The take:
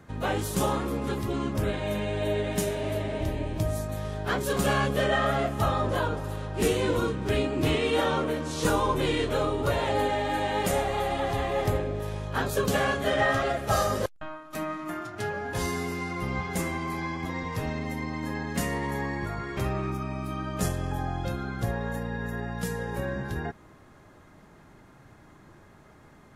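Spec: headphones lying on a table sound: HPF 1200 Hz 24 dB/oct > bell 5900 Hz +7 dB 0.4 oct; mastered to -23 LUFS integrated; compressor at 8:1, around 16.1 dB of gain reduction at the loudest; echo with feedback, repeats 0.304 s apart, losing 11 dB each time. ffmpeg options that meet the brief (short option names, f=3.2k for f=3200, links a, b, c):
-af "acompressor=threshold=-38dB:ratio=8,highpass=f=1.2k:w=0.5412,highpass=f=1.2k:w=1.3066,equalizer=f=5.9k:t=o:w=0.4:g=7,aecho=1:1:304|608|912:0.282|0.0789|0.0221,volume=24.5dB"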